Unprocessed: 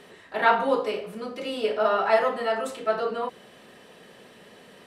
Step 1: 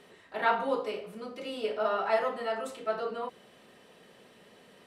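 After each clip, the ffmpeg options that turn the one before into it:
-af "bandreject=f=1700:w=22,volume=0.473"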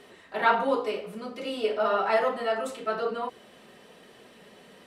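-af "flanger=delay=2.7:depth=2.6:regen=-54:speed=1.2:shape=sinusoidal,volume=2.66"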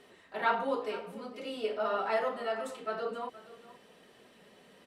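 -af "aecho=1:1:471:0.141,volume=0.473"

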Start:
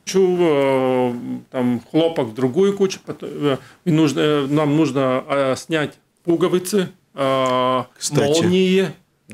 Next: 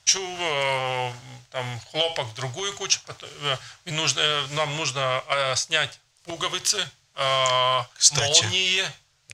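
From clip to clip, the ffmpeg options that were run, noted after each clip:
-af "firequalizer=gain_entry='entry(120,0);entry(200,-29);entry(620,-3);entry(3200,8);entry(6300,12);entry(11000,-7)':delay=0.05:min_phase=1,volume=0.841"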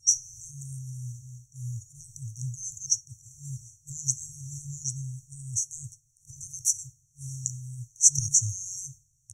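-af "afftfilt=real='re*(1-between(b*sr/4096,140,5600))':imag='im*(1-between(b*sr/4096,140,5600))':win_size=4096:overlap=0.75"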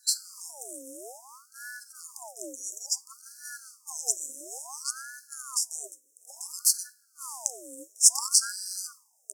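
-af "aexciter=amount=9:drive=6.3:freq=7600,aeval=exprs='val(0)*sin(2*PI*1000*n/s+1000*0.6/0.58*sin(2*PI*0.58*n/s))':c=same,volume=0.531"

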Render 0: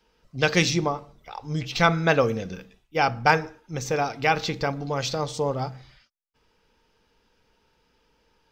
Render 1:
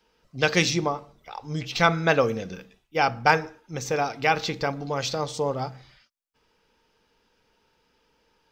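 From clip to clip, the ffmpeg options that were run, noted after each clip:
-af "lowshelf=f=120:g=-6.5"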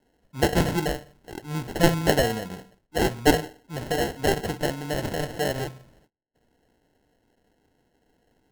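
-af "acrusher=samples=37:mix=1:aa=0.000001"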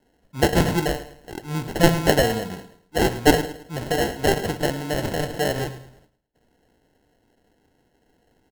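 -af "aecho=1:1:108|216|324:0.188|0.0659|0.0231,volume=1.41"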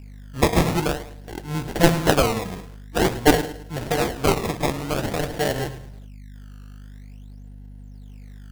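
-af "aeval=exprs='val(0)+0.0112*(sin(2*PI*50*n/s)+sin(2*PI*2*50*n/s)/2+sin(2*PI*3*50*n/s)/3+sin(2*PI*4*50*n/s)/4+sin(2*PI*5*50*n/s)/5)':c=same,acrusher=samples=17:mix=1:aa=0.000001:lfo=1:lforange=27.2:lforate=0.49"

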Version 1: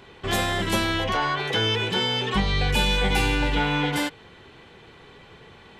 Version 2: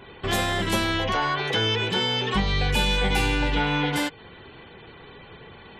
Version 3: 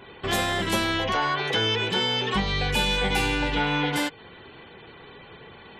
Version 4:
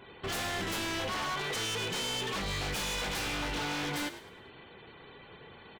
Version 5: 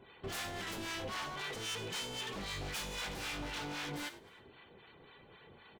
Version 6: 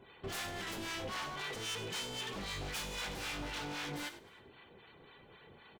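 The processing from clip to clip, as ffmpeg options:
-filter_complex "[0:a]asplit=2[s0][s1];[s1]acompressor=threshold=0.0282:ratio=6,volume=0.944[s2];[s0][s2]amix=inputs=2:normalize=0,afftfilt=real='re*gte(hypot(re,im),0.00562)':imag='im*gte(hypot(re,im),0.00562)':win_size=1024:overlap=0.75,volume=0.75"
-af "lowshelf=f=110:g=-6.5"
-filter_complex "[0:a]aeval=exprs='0.0668*(abs(mod(val(0)/0.0668+3,4)-2)-1)':c=same,asplit=5[s0][s1][s2][s3][s4];[s1]adelay=104,afreqshift=51,volume=0.237[s5];[s2]adelay=208,afreqshift=102,volume=0.0851[s6];[s3]adelay=312,afreqshift=153,volume=0.0309[s7];[s4]adelay=416,afreqshift=204,volume=0.0111[s8];[s0][s5][s6][s7][s8]amix=inputs=5:normalize=0,volume=0.501"
-filter_complex "[0:a]acrossover=split=760[s0][s1];[s0]aeval=exprs='val(0)*(1-0.7/2+0.7/2*cos(2*PI*3.8*n/s))':c=same[s2];[s1]aeval=exprs='val(0)*(1-0.7/2-0.7/2*cos(2*PI*3.8*n/s))':c=same[s3];[s2][s3]amix=inputs=2:normalize=0,volume=0.668"
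-af "aecho=1:1:98:0.133"

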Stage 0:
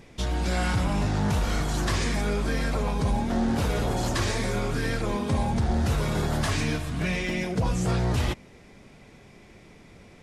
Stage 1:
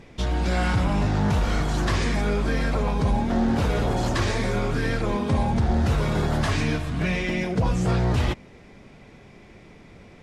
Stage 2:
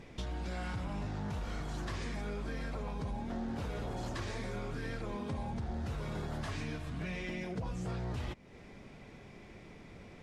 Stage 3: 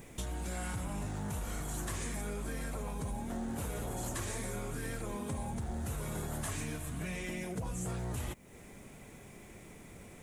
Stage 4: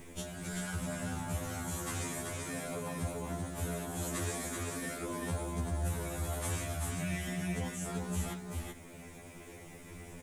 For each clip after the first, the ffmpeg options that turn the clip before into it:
-af "highshelf=f=6800:g=-11.5,volume=1.41"
-af "acompressor=threshold=0.0178:ratio=3,volume=0.596"
-af "aexciter=amount=5.7:drive=8.8:freq=7100"
-af "aecho=1:1:385:0.668,afftfilt=real='re*2*eq(mod(b,4),0)':imag='im*2*eq(mod(b,4),0)':win_size=2048:overlap=0.75,volume=1.5"

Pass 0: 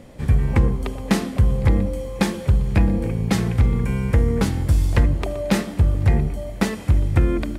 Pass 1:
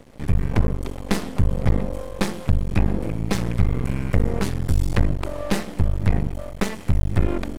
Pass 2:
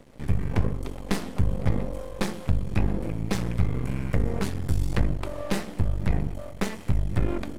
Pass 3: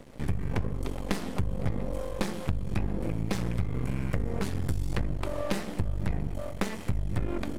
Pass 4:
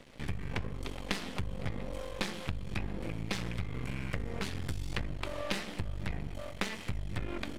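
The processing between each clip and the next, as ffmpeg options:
-af "aeval=exprs='max(val(0),0)':c=same,volume=1.12"
-af "flanger=delay=5.1:depth=7.1:regen=-71:speed=0.99:shape=triangular"
-af "acompressor=threshold=0.0501:ratio=6,volume=1.33"
-af "equalizer=f=3100:t=o:w=2.4:g=11,volume=0.422"

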